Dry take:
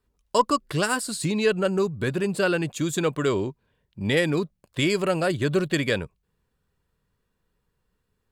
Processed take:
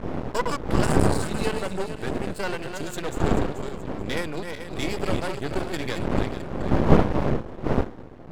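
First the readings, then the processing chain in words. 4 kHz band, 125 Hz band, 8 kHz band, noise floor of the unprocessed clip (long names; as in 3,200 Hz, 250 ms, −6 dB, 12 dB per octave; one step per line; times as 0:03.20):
−4.5 dB, +3.0 dB, −4.5 dB, −76 dBFS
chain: feedback delay that plays each chunk backwards 217 ms, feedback 59%, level −6.5 dB
wind on the microphone 370 Hz −19 dBFS
half-wave rectification
level −3 dB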